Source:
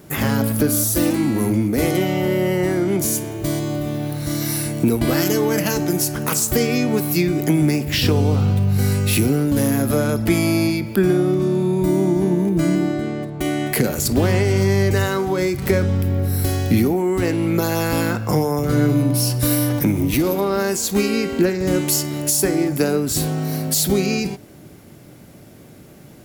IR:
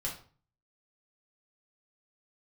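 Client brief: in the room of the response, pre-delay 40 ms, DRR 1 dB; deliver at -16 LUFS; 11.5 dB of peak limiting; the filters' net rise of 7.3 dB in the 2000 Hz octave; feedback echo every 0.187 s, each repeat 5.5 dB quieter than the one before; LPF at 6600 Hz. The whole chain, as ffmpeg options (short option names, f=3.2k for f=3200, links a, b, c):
-filter_complex "[0:a]lowpass=6.6k,equalizer=f=2k:t=o:g=9,alimiter=limit=-15.5dB:level=0:latency=1,aecho=1:1:187|374|561|748|935|1122|1309:0.531|0.281|0.149|0.079|0.0419|0.0222|0.0118,asplit=2[a][b];[1:a]atrim=start_sample=2205,adelay=40[c];[b][c]afir=irnorm=-1:irlink=0,volume=-3.5dB[d];[a][d]amix=inputs=2:normalize=0,volume=3dB"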